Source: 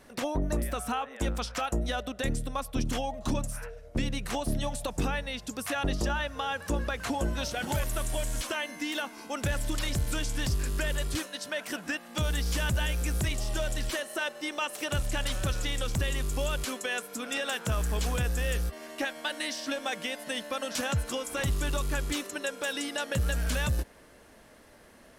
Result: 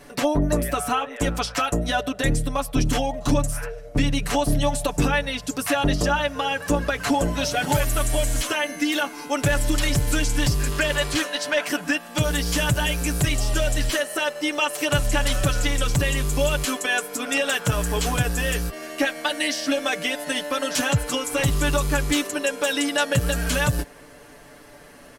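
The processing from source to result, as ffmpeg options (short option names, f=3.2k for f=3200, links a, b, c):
-filter_complex "[0:a]asettb=1/sr,asplit=3[a][b][c];[a]atrim=end=10.714[d];[b]atrim=start=10.71:end=11.68,asetpts=PTS-STARTPTS,afade=t=in:d=0.004:c=qsin,afade=t=out:st=0.966:d=0.004:c=qsin,asplit=2[e][f];[f]highpass=f=720:p=1,volume=11dB,asoftclip=type=tanh:threshold=-20.5dB[g];[e][g]amix=inputs=2:normalize=0,lowpass=f=3.7k:p=1,volume=-6dB[h];[c]atrim=start=11.676[i];[d][h]acrossfade=d=0.004:c1=hsin:c2=qsin[j];[j][i]acrossfade=d=0.004:c1=qsin:c2=hsin,bandreject=f=3.6k:w=26,aecho=1:1:6.9:0.77,volume=7dB"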